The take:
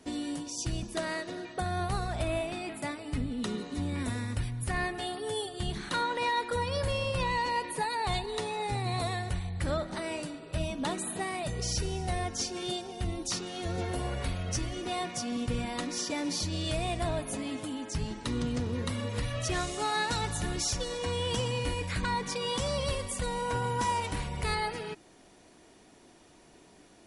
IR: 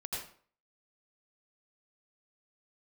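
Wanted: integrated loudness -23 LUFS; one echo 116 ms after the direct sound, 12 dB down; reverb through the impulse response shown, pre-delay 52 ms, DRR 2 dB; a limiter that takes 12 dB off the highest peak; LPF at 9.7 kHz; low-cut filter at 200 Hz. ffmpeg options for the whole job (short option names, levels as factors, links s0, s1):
-filter_complex "[0:a]highpass=200,lowpass=9700,alimiter=level_in=2.37:limit=0.0631:level=0:latency=1,volume=0.422,aecho=1:1:116:0.251,asplit=2[s0][s1];[1:a]atrim=start_sample=2205,adelay=52[s2];[s1][s2]afir=irnorm=-1:irlink=0,volume=0.668[s3];[s0][s3]amix=inputs=2:normalize=0,volume=5.01"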